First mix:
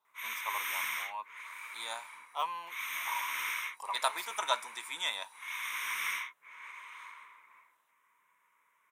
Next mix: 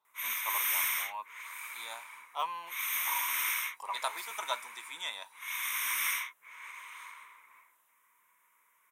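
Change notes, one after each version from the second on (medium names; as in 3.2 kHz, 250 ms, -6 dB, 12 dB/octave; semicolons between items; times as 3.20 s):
second voice -4.0 dB; background: add peaking EQ 14 kHz +13 dB 1.5 oct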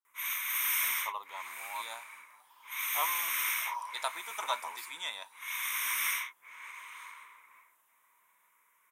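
first voice: entry +0.60 s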